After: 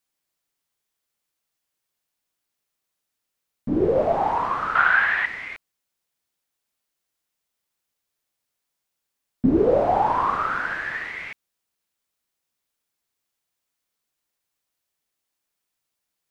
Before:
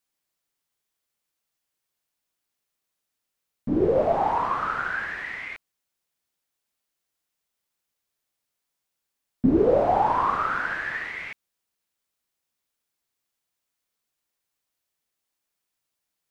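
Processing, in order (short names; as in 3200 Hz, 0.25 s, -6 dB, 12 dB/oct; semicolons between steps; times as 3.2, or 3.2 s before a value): 4.75–5.26 band shelf 1600 Hz +10 dB 2.8 oct; gain +1 dB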